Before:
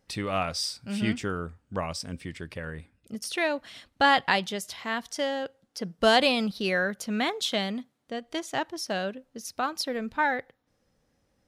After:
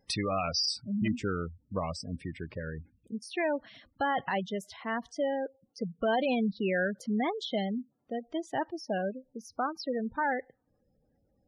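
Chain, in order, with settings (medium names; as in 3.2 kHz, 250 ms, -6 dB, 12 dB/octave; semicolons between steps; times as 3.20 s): spectral gate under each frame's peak -15 dB strong; treble shelf 2.5 kHz +7 dB, from 1.08 s -6.5 dB, from 2.44 s -12 dB; peak limiter -21 dBFS, peak gain reduction 8 dB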